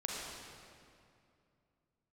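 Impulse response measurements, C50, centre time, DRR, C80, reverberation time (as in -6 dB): -2.0 dB, 0.138 s, -3.5 dB, -0.5 dB, 2.5 s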